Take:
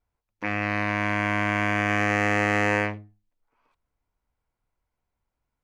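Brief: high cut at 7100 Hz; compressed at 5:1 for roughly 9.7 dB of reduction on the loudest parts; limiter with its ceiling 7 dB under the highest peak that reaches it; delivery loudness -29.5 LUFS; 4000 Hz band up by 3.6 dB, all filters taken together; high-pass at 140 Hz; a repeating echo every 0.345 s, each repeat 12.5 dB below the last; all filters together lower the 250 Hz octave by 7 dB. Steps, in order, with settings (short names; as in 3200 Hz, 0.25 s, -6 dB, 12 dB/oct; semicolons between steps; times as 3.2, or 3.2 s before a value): HPF 140 Hz; LPF 7100 Hz; bell 250 Hz -9 dB; bell 4000 Hz +6 dB; compressor 5:1, threshold -29 dBFS; limiter -24 dBFS; feedback echo 0.345 s, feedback 24%, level -12.5 dB; gain +7 dB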